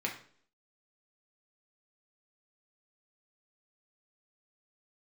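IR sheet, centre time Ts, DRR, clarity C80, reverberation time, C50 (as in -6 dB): 21 ms, -1.5 dB, 13.0 dB, 0.55 s, 8.5 dB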